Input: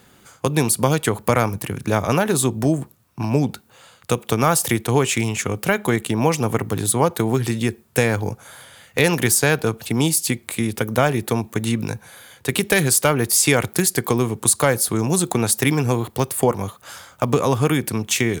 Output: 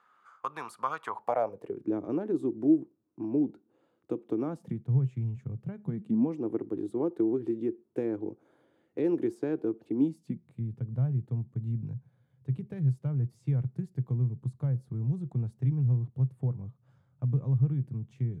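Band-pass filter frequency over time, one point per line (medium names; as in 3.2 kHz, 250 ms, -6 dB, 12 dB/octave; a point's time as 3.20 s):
band-pass filter, Q 6.3
1.00 s 1.2 kHz
1.85 s 320 Hz
4.44 s 320 Hz
4.85 s 130 Hz
5.75 s 130 Hz
6.43 s 330 Hz
9.91 s 330 Hz
10.58 s 130 Hz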